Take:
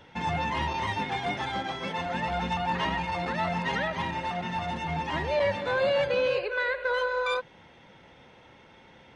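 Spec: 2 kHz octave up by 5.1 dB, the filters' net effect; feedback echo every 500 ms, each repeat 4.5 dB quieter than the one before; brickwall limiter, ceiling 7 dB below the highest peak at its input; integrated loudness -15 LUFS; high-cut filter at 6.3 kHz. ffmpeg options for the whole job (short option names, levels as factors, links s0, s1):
-af "lowpass=6300,equalizer=f=2000:t=o:g=6.5,alimiter=limit=0.0891:level=0:latency=1,aecho=1:1:500|1000|1500|2000|2500|3000|3500|4000|4500:0.596|0.357|0.214|0.129|0.0772|0.0463|0.0278|0.0167|0.01,volume=4.47"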